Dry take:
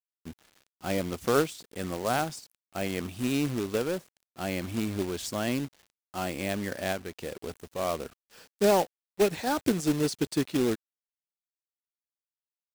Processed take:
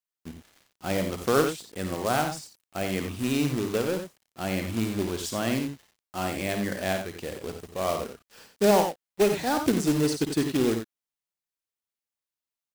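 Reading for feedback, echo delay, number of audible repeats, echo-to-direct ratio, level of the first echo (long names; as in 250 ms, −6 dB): repeats not evenly spaced, 53 ms, 2, −5.0 dB, −8.5 dB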